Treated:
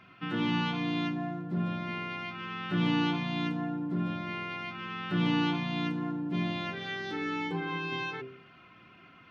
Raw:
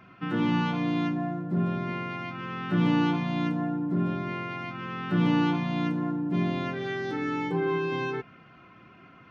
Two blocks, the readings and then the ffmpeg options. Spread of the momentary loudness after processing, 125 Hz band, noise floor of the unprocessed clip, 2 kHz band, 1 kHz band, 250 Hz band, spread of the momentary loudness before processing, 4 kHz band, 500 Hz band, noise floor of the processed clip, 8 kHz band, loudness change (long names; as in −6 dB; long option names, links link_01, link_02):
9 LU, −4.5 dB, −53 dBFS, −0.5 dB, −3.5 dB, −4.5 dB, 10 LU, +3.0 dB, −7.5 dB, −56 dBFS, can't be measured, −4.0 dB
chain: -af "equalizer=frequency=3400:width_type=o:width=1.5:gain=8,bandreject=frequency=65.31:width_type=h:width=4,bandreject=frequency=130.62:width_type=h:width=4,bandreject=frequency=195.93:width_type=h:width=4,bandreject=frequency=261.24:width_type=h:width=4,bandreject=frequency=326.55:width_type=h:width=4,bandreject=frequency=391.86:width_type=h:width=4,bandreject=frequency=457.17:width_type=h:width=4,bandreject=frequency=522.48:width_type=h:width=4,bandreject=frequency=587.79:width_type=h:width=4,bandreject=frequency=653.1:width_type=h:width=4,volume=-4.5dB"